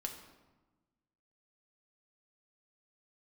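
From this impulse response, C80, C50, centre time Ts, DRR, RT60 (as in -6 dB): 9.5 dB, 7.5 dB, 25 ms, 2.0 dB, 1.2 s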